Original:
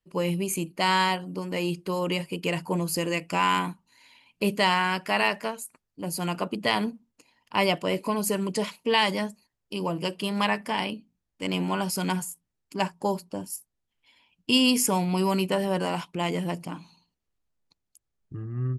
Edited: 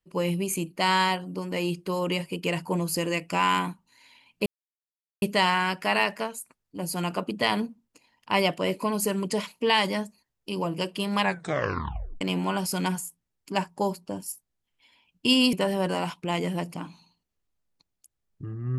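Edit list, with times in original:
4.46 insert silence 0.76 s
10.46 tape stop 0.99 s
14.77–15.44 cut

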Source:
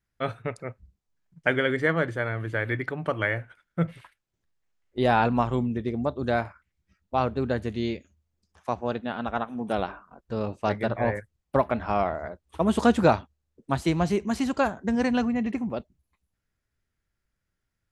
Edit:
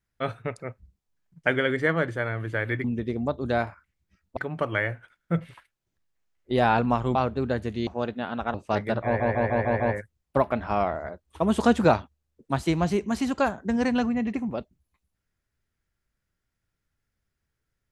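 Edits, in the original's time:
5.62–7.15 move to 2.84
7.87–8.74 cut
9.41–10.48 cut
10.99 stutter 0.15 s, 6 plays

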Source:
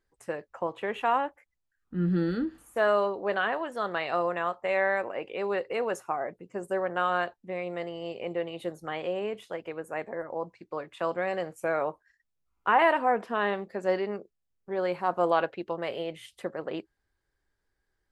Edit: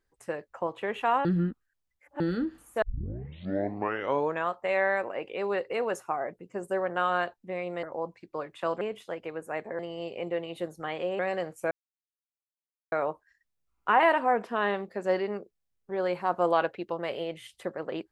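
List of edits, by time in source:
1.25–2.2 reverse
2.82 tape start 1.64 s
7.83–9.23 swap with 10.21–11.19
11.71 insert silence 1.21 s

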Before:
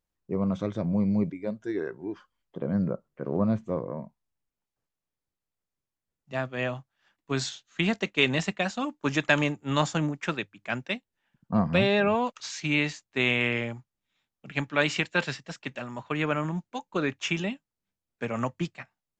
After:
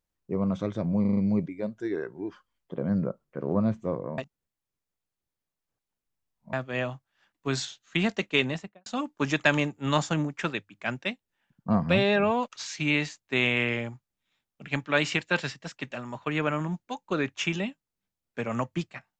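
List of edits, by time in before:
1.01 stutter 0.04 s, 5 plays
4.02–6.37 reverse
8.14–8.7 studio fade out

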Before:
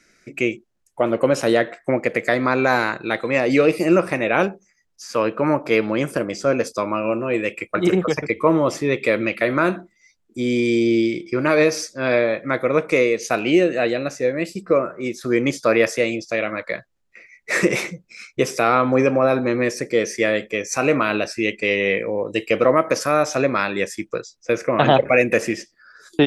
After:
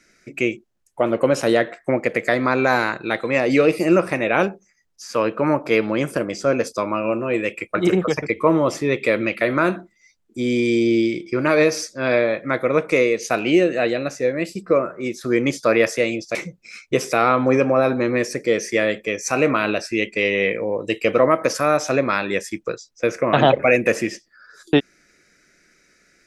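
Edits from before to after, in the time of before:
16.35–17.81 cut

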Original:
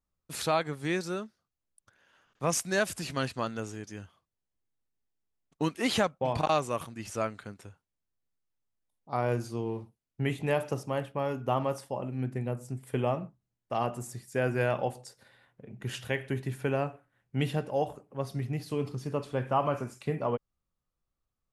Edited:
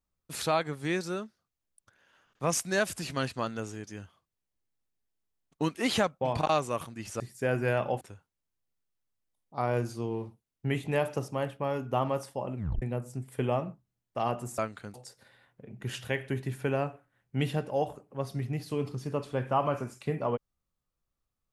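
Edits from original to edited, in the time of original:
7.2–7.56 swap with 14.13–14.94
12.12 tape stop 0.25 s

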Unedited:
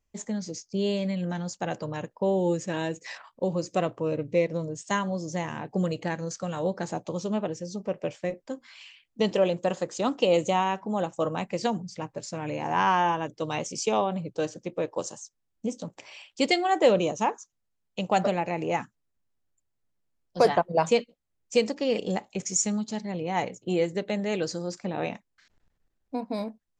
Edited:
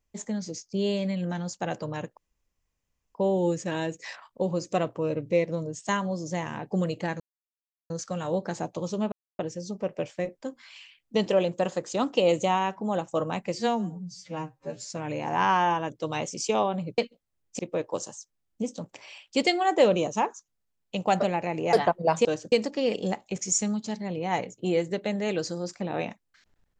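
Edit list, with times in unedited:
2.17 insert room tone 0.98 s
6.22 insert silence 0.70 s
7.44 insert silence 0.27 s
11.61–12.28 stretch 2×
14.36–14.63 swap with 20.95–21.56
18.77–20.43 cut

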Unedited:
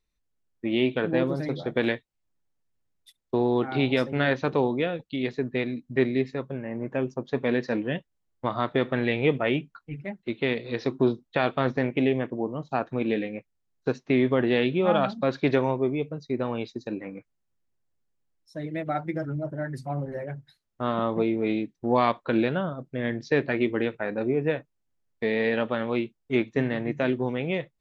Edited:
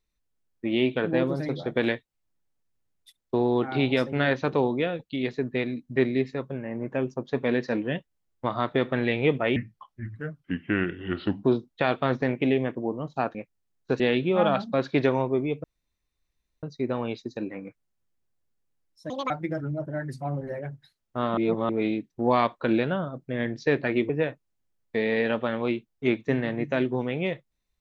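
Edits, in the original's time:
9.56–10.98 speed 76%
12.9–13.32 cut
13.97–14.49 cut
16.13 insert room tone 0.99 s
18.6–18.95 speed 171%
21.02–21.34 reverse
23.74–24.37 cut

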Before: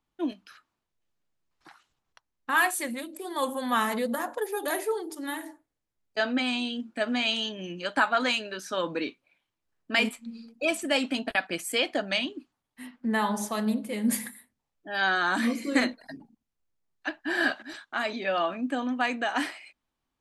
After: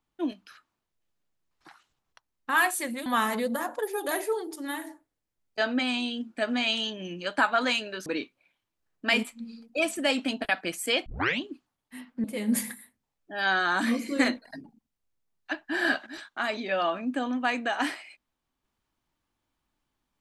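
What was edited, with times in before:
3.06–3.65 cut
8.65–8.92 cut
11.92 tape start 0.33 s
13.1–13.8 cut

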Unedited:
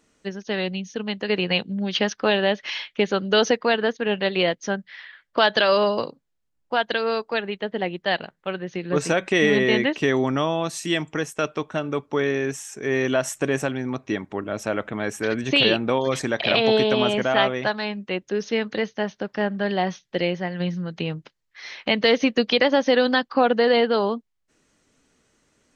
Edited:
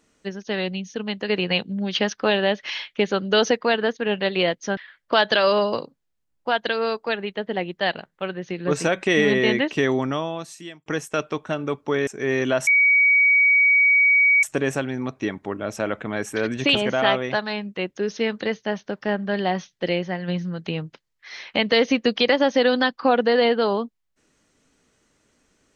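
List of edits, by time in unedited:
4.77–5.02 cut
10.15–11.11 fade out
12.32–12.7 cut
13.3 add tone 2260 Hz -13 dBFS 1.76 s
15.62–17.07 cut

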